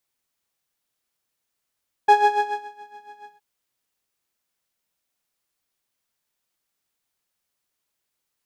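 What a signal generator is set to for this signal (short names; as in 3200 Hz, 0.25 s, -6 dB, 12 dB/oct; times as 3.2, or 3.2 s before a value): synth patch with tremolo G#5, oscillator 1 saw, interval +12 st, detune 16 cents, sub -25.5 dB, noise -25.5 dB, filter bandpass, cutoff 160 Hz, Q 2.3, filter envelope 1.5 oct, filter decay 0.89 s, attack 8.2 ms, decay 0.60 s, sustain -22.5 dB, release 0.12 s, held 1.20 s, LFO 7.1 Hz, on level 12 dB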